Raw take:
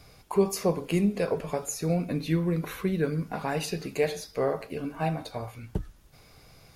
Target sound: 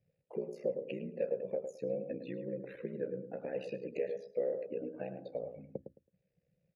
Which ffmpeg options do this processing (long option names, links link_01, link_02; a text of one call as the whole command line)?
ffmpeg -i in.wav -filter_complex "[0:a]afftdn=noise_reduction=26:noise_floor=-40,aeval=exprs='val(0)*sin(2*PI*31*n/s)':channel_layout=same,acompressor=threshold=-38dB:ratio=5,asplit=3[link_01][link_02][link_03];[link_01]bandpass=frequency=530:width_type=q:width=8,volume=0dB[link_04];[link_02]bandpass=frequency=1840:width_type=q:width=8,volume=-6dB[link_05];[link_03]bandpass=frequency=2480:width_type=q:width=8,volume=-9dB[link_06];[link_04][link_05][link_06]amix=inputs=3:normalize=0,equalizer=frequency=190:width=0.64:gain=13,asplit=2[link_07][link_08];[link_08]adelay=108,lowpass=frequency=1400:poles=1,volume=-8dB,asplit=2[link_09][link_10];[link_10]adelay=108,lowpass=frequency=1400:poles=1,volume=0.21,asplit=2[link_11][link_12];[link_12]adelay=108,lowpass=frequency=1400:poles=1,volume=0.21[link_13];[link_09][link_11][link_13]amix=inputs=3:normalize=0[link_14];[link_07][link_14]amix=inputs=2:normalize=0,volume=8dB" out.wav